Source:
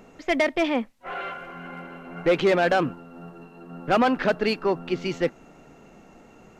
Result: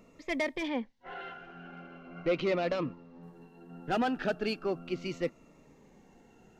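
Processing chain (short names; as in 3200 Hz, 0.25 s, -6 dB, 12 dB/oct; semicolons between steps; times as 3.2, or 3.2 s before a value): 0.68–3.23 LPF 5700 Hz 24 dB/oct; cascading phaser falling 0.38 Hz; gain -7.5 dB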